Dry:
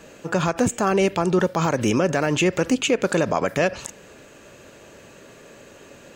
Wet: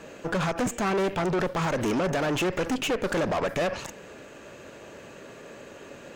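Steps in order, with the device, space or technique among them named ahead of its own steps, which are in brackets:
tube preamp driven hard (tube saturation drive 28 dB, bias 0.65; low-shelf EQ 160 Hz −5 dB; high-shelf EQ 3,900 Hz −8 dB)
level +6 dB

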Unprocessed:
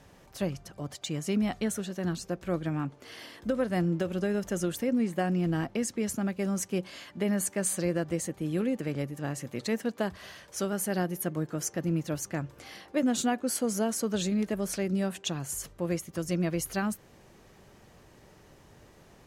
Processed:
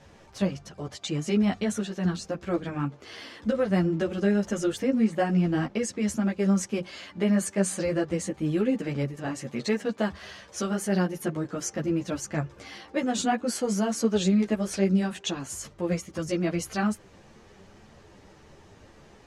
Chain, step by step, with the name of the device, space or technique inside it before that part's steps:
string-machine ensemble chorus (string-ensemble chorus; low-pass filter 7,200 Hz 12 dB per octave)
level +6.5 dB

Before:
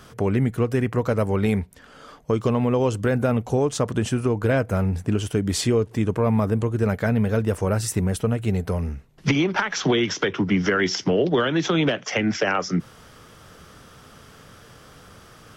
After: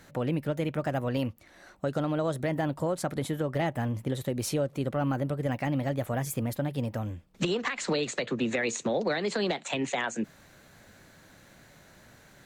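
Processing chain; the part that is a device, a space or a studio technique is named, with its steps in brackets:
nightcore (speed change +25%)
level −8 dB

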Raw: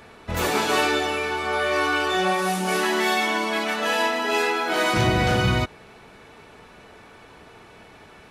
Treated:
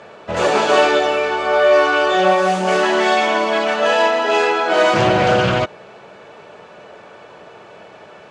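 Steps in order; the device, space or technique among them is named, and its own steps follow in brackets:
full-range speaker at full volume (highs frequency-modulated by the lows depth 0.28 ms; loudspeaker in its box 160–6,900 Hz, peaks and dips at 260 Hz −8 dB, 580 Hz +9 dB, 2,100 Hz −5 dB, 3,900 Hz −5 dB, 5,500 Hz −5 dB)
level +6.5 dB

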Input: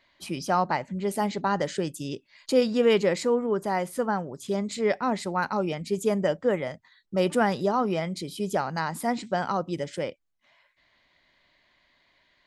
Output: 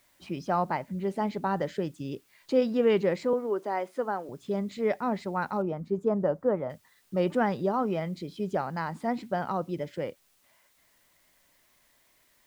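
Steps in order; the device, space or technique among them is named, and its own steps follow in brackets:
cassette deck with a dirty head (head-to-tape spacing loss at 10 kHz 21 dB; tape wow and flutter; white noise bed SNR 37 dB)
0:03.33–0:04.29: high-pass filter 270 Hz 24 dB per octave
0:05.62–0:06.70: high shelf with overshoot 1,700 Hz −11 dB, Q 1.5
level −1.5 dB

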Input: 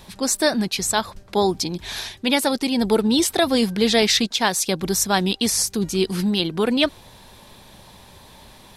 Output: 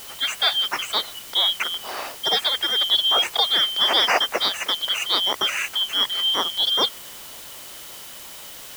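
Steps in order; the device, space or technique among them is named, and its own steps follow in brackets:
split-band scrambled radio (band-splitting scrambler in four parts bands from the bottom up 3412; band-pass filter 400–3,300 Hz; white noise bed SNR 16 dB)
level +1.5 dB

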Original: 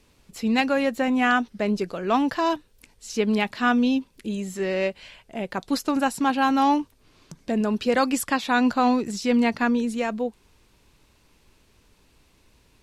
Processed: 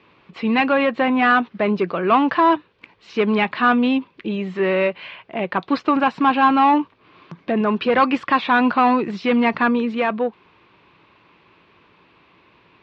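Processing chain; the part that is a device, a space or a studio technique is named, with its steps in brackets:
overdrive pedal into a guitar cabinet (mid-hump overdrive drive 16 dB, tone 2,700 Hz, clips at −9 dBFS; loudspeaker in its box 77–3,600 Hz, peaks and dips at 110 Hz +6 dB, 170 Hz +8 dB, 340 Hz +6 dB, 1,100 Hz +7 dB, 2,400 Hz +3 dB)

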